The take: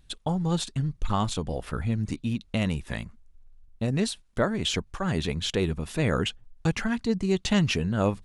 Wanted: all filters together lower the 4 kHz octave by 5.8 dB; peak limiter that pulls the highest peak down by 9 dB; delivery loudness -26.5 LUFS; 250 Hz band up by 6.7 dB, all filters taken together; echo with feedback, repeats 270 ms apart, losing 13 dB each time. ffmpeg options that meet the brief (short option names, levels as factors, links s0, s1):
-af "equalizer=f=250:t=o:g=9,equalizer=f=4000:t=o:g=-8,alimiter=limit=0.158:level=0:latency=1,aecho=1:1:270|540|810:0.224|0.0493|0.0108"